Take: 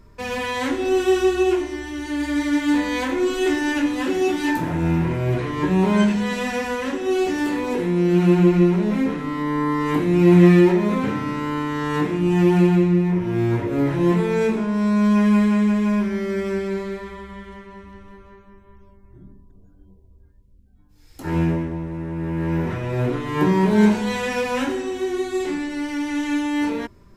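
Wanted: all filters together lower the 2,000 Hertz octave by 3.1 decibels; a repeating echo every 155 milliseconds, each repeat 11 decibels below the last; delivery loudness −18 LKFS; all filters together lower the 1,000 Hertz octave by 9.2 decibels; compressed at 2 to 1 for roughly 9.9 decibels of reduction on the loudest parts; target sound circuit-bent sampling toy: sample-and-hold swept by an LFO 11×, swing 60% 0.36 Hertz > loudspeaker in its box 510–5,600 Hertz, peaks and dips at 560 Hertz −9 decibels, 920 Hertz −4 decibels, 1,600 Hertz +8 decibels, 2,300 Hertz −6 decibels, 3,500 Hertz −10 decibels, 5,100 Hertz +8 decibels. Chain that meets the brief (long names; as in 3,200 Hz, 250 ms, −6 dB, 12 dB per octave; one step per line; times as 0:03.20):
parametric band 1,000 Hz −7 dB
parametric band 2,000 Hz −4.5 dB
downward compressor 2 to 1, threshold −28 dBFS
repeating echo 155 ms, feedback 28%, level −11 dB
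sample-and-hold swept by an LFO 11×, swing 60% 0.36 Hz
loudspeaker in its box 510–5,600 Hz, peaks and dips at 560 Hz −9 dB, 920 Hz −4 dB, 1,600 Hz +8 dB, 2,300 Hz −6 dB, 3,500 Hz −10 dB, 5,100 Hz +8 dB
level +17.5 dB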